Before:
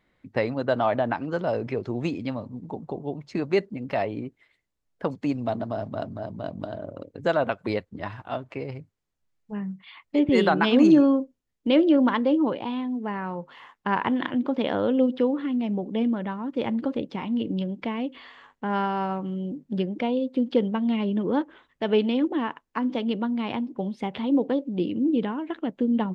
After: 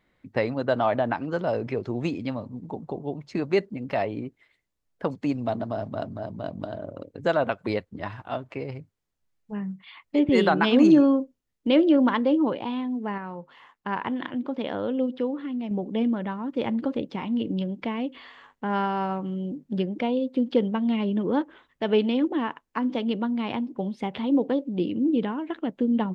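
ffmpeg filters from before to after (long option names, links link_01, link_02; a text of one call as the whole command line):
ffmpeg -i in.wav -filter_complex "[0:a]asplit=3[link_01][link_02][link_03];[link_01]atrim=end=13.182[link_04];[link_02]atrim=start=13.178:end=15.712,asetpts=PTS-STARTPTS,volume=-4.5dB[link_05];[link_03]atrim=start=15.708[link_06];[link_04][link_05]acrossfade=duration=0.004:curve1=hsin:curve2=hsin[link_07];[link_07][link_06]acrossfade=duration=0.004:curve1=hsin:curve2=hsin" out.wav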